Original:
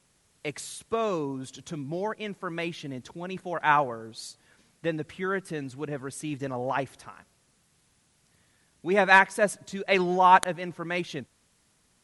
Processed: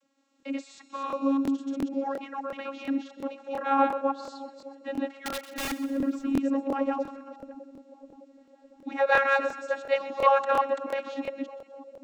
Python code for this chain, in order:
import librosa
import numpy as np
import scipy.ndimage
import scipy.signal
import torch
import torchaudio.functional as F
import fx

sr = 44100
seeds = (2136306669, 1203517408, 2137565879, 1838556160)

p1 = fx.reverse_delay(x, sr, ms=171, wet_db=-0.5)
p2 = fx.vocoder(p1, sr, bands=32, carrier='saw', carrier_hz=274.0)
p3 = fx.overflow_wrap(p2, sr, gain_db=25.0, at=(5.17, 5.72))
p4 = p3 + fx.echo_split(p3, sr, split_hz=760.0, low_ms=611, high_ms=127, feedback_pct=52, wet_db=-15.0, dry=0)
p5 = fx.buffer_crackle(p4, sr, first_s=0.38, period_s=0.35, block=1024, kind='repeat')
y = F.gain(torch.from_numpy(p5), -2.5).numpy()